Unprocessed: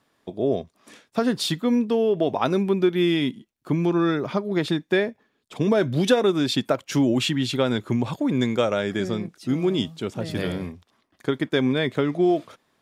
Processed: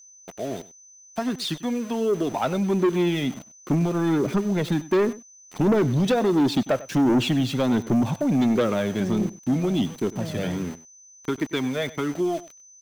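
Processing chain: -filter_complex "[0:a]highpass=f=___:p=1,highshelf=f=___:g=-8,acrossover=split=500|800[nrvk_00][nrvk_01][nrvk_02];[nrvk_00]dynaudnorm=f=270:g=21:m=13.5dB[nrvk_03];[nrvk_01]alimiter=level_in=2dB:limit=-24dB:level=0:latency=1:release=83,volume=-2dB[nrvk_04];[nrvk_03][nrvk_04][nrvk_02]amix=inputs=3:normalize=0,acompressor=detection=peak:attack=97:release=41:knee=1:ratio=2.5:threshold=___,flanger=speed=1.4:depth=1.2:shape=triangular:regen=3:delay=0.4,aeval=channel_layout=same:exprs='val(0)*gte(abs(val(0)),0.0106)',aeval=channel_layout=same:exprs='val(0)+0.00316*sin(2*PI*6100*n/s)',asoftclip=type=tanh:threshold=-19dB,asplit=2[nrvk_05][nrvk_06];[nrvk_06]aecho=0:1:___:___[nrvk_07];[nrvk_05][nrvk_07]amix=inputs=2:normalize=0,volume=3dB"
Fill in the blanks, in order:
340, 5.2k, -17dB, 97, 0.126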